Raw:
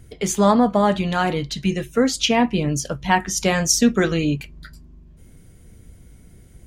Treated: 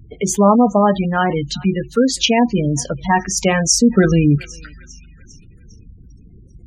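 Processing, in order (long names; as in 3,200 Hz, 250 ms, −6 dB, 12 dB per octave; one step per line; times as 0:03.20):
asymmetric clip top −10 dBFS, bottom −7 dBFS
0:01.85–0:03.13: parametric band 580 Hz → 3,000 Hz −8.5 dB 0.38 octaves
feedback echo with a high-pass in the loop 400 ms, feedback 61%, high-pass 1,200 Hz, level −17.5 dB
gate on every frequency bin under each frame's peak −20 dB strong
0:03.97–0:04.38: bass and treble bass +7 dB, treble −3 dB
level +4 dB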